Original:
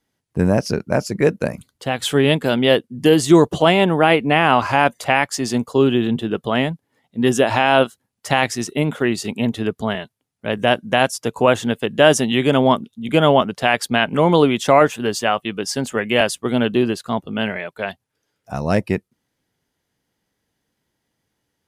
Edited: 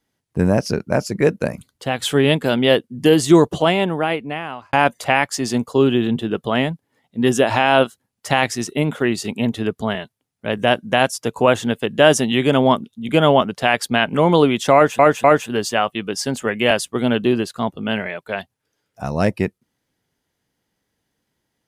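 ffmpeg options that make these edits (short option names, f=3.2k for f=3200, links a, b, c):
-filter_complex "[0:a]asplit=4[a][b][c][d];[a]atrim=end=4.73,asetpts=PTS-STARTPTS,afade=t=out:st=3.35:d=1.38[e];[b]atrim=start=4.73:end=14.992,asetpts=PTS-STARTPTS,afade=t=in:d=0.004:c=hsin[f];[c]atrim=start=14.738:end=14.992[g];[d]atrim=start=14.738[h];[e][f]concat=n=2:v=0:a=1[i];[i][g]acrossfade=d=0.004:c1=hsin:c2=hsin[j];[j][h]acrossfade=d=0.004:c1=hsin:c2=hsin"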